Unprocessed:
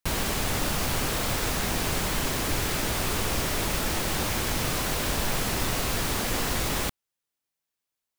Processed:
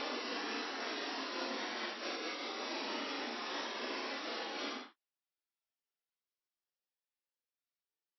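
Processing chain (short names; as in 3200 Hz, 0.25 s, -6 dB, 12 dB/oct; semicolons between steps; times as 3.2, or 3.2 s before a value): Paulstretch 9.2×, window 0.05 s, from 6.38; brick-wall FIR band-pass 220–5800 Hz; noise-modulated level, depth 50%; gain -7.5 dB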